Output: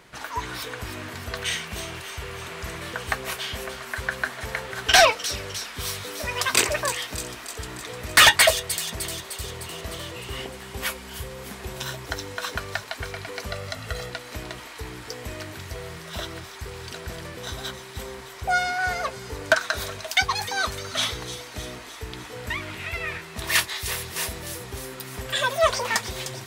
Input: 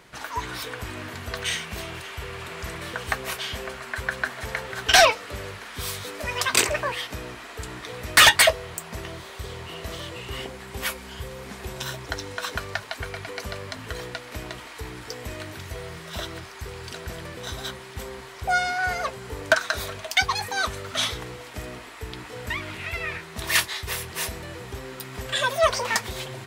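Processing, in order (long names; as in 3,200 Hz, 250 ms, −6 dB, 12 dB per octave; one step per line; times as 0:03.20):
0:13.50–0:14.10: comb filter 1.5 ms, depth 63%
delay with a high-pass on its return 304 ms, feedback 63%, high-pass 4,600 Hz, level −7 dB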